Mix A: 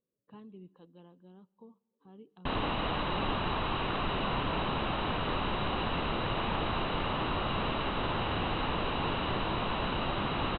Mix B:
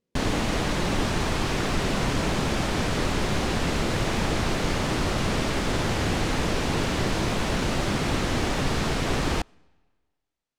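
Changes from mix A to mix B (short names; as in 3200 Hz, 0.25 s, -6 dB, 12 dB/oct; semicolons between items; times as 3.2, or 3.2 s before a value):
background: entry -2.30 s; master: remove rippled Chebyshev low-pass 4000 Hz, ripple 9 dB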